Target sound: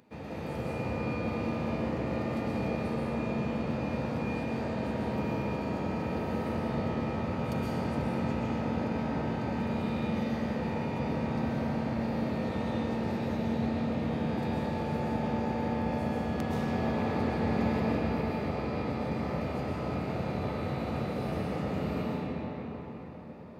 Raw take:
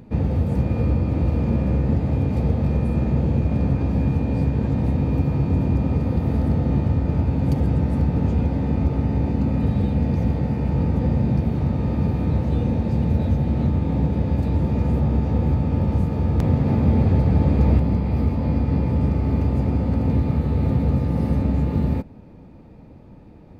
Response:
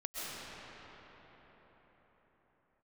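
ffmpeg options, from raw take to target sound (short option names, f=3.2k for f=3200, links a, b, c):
-filter_complex "[0:a]highpass=f=1.1k:p=1[a];[1:a]atrim=start_sample=2205[b];[a][b]afir=irnorm=-1:irlink=0"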